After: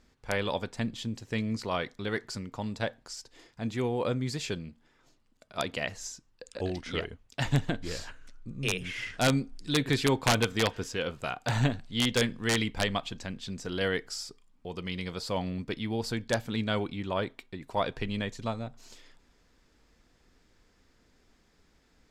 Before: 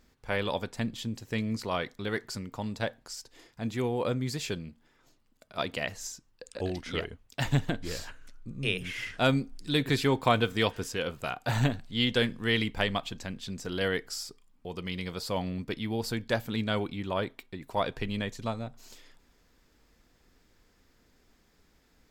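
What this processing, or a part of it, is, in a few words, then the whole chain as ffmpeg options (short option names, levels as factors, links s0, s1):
overflowing digital effects unit: -filter_complex "[0:a]aeval=exprs='(mod(5.62*val(0)+1,2)-1)/5.62':c=same,lowpass=9300,asettb=1/sr,asplit=3[s0][s1][s2];[s0]atrim=end=10.514[s3];[s1]atrim=start=10.51:end=11.14,asetpts=PTS-STARTPTS,afade=t=in:d=0.004:c=qsin,afade=t=out:st=0.626:d=0.004:c=qsin,equalizer=f=9100:t=o:w=0.28:g=-5.5[s4];[s2]atrim=start=11.136[s5];[s3][s4]acrossfade=d=0.004:c1=hsin:c2=qsin[s6];[s6][s5]acrossfade=d=0.004:c1=qsin:c2=hsin"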